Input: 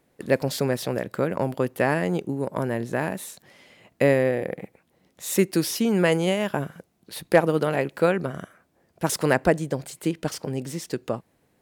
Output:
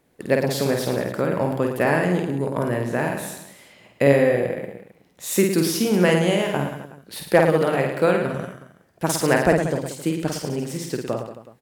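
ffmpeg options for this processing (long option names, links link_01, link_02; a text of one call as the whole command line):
ffmpeg -i in.wav -af "aecho=1:1:50|110|182|268.4|372.1:0.631|0.398|0.251|0.158|0.1,volume=1dB" out.wav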